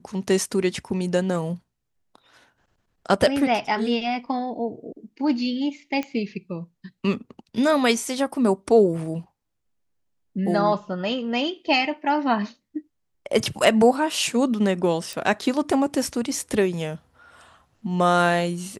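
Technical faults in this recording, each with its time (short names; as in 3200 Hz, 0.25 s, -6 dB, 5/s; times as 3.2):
6.03 pop -16 dBFS
15.13 pop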